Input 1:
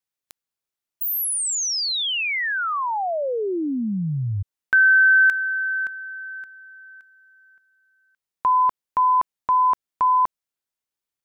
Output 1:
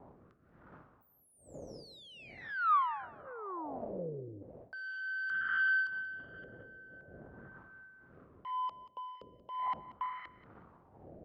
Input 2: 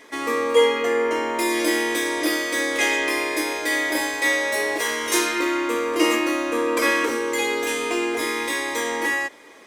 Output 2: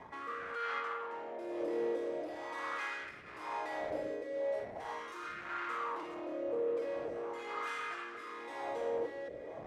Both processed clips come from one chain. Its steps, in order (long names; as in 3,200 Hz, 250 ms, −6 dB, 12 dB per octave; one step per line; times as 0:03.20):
wind on the microphone 120 Hz −27 dBFS
dynamic equaliser 1,400 Hz, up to −4 dB, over −31 dBFS, Q 0.91
brickwall limiter −15 dBFS
reversed playback
downward compressor 4 to 1, threshold −33 dBFS
reversed playback
sine wavefolder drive 14 dB, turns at −17.5 dBFS
shaped tremolo triangle 0.57 Hz, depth 30%
rotating-speaker cabinet horn 1 Hz
LFO wah 0.41 Hz 500–1,400 Hz, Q 3.9
on a send: feedback echo with a high-pass in the loop 183 ms, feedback 22%, high-pass 1,000 Hz, level −14.5 dB
on the sum: level −3.5 dB